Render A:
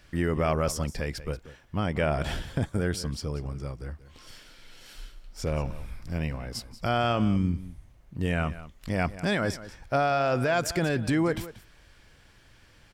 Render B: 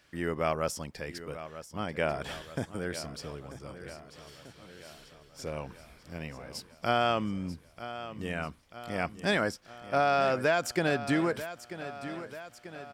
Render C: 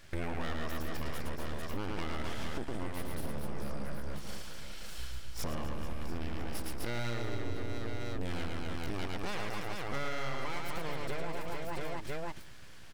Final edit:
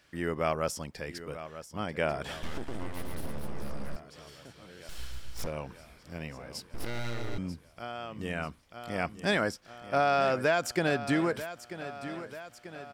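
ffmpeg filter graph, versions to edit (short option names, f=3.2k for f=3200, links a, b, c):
-filter_complex "[2:a]asplit=3[a][b][c];[1:a]asplit=4[d][e][f][g];[d]atrim=end=2.432[h];[a]atrim=start=2.428:end=3.962[i];[e]atrim=start=3.958:end=4.892[j];[b]atrim=start=4.888:end=5.472[k];[f]atrim=start=5.468:end=6.742[l];[c]atrim=start=6.738:end=7.382[m];[g]atrim=start=7.378[n];[h][i]acrossfade=d=0.004:c1=hsin:c2=hsin[o];[o][j]acrossfade=d=0.004:c1=hsin:c2=hsin[p];[p][k]acrossfade=d=0.004:c1=hsin:c2=hsin[q];[q][l]acrossfade=d=0.004:c1=hsin:c2=hsin[r];[r][m]acrossfade=d=0.004:c1=hsin:c2=hsin[s];[s][n]acrossfade=d=0.004:c1=hsin:c2=hsin"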